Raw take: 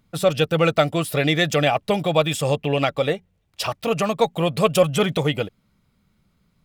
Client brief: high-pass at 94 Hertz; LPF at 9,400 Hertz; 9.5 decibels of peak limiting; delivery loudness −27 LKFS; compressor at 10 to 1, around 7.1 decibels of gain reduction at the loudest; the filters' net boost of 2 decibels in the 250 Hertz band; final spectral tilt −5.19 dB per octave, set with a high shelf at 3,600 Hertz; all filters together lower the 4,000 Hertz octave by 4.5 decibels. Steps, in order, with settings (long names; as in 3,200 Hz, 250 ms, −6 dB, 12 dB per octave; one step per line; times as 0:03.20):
high-pass filter 94 Hz
low-pass filter 9,400 Hz
parametric band 250 Hz +3.5 dB
high-shelf EQ 3,600 Hz +3.5 dB
parametric band 4,000 Hz −8 dB
downward compressor 10 to 1, threshold −18 dBFS
level +2.5 dB
brickwall limiter −16.5 dBFS